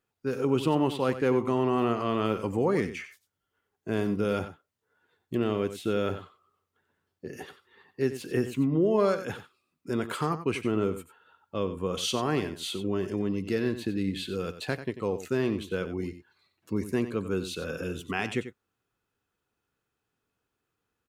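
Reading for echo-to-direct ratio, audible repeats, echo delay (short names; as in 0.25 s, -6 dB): -12.0 dB, 1, 92 ms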